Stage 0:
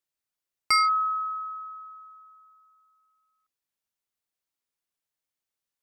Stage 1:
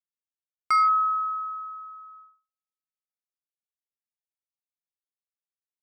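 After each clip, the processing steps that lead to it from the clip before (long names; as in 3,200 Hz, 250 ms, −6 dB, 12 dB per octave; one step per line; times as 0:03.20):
noise gate −52 dBFS, range −46 dB
high shelf with overshoot 2,100 Hz −11 dB, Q 1.5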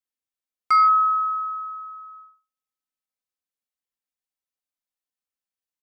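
comb filter 3.9 ms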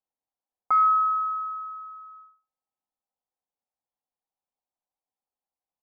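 low-pass with resonance 820 Hz, resonance Q 3.4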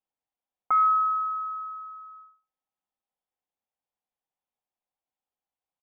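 dynamic equaliser 910 Hz, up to −5 dB, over −38 dBFS, Q 2.4
downsampling to 8,000 Hz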